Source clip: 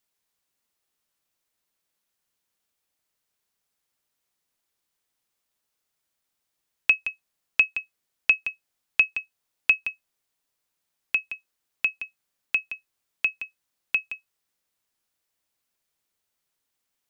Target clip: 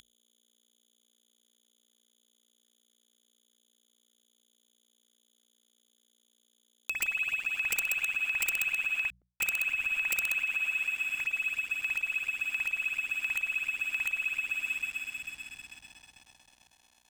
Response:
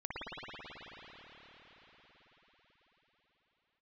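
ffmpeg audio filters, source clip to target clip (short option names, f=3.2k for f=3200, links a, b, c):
-filter_complex "[1:a]atrim=start_sample=2205[a];[0:a][a]afir=irnorm=-1:irlink=0,aeval=exprs='val(0)+0.00355*sin(2*PI*3400*n/s)':c=same,equalizer=f=1.5k:w=4.1:g=5.5,acompressor=mode=upward:threshold=-42dB:ratio=2.5,equalizer=f=360:w=1.3:g=-13.5,asettb=1/sr,asplit=3[b][c][d];[b]atrim=end=9.104[e];[c]atrim=start=9.1:end=11.2,asetpts=PTS-STARTPTS,afade=t=in:d=0.004:c=qsin,afade=t=out:st=2.096:d=0.004:c=qsin,acrossover=split=260|5000[f][g][h];[g]adelay=300[i];[h]adelay=780[j];[f][i][j]amix=inputs=3:normalize=0,atrim=end_sample=92610[k];[d]atrim=start=11.196[l];[e][k]acrossfade=d=0.004:c1=hsin:c2=qsin[m];[m][l]acrossfade=d=0.004:c1=qsin:c2=hsin,aeval=exprs='(mod(3.98*val(0)+1,2)-1)/3.98':c=same,aeval=exprs='val(0)+0.00251*(sin(2*PI*60*n/s)+sin(2*PI*2*60*n/s)/2+sin(2*PI*3*60*n/s)/3+sin(2*PI*4*60*n/s)/4+sin(2*PI*5*60*n/s)/5)':c=same,aeval=exprs='sgn(val(0))*max(abs(val(0))-0.00794,0)':c=same,bandreject=f=60:t=h:w=6,bandreject=f=120:t=h:w=6,bandreject=f=180:t=h:w=6,alimiter=limit=-22.5dB:level=0:latency=1:release=138"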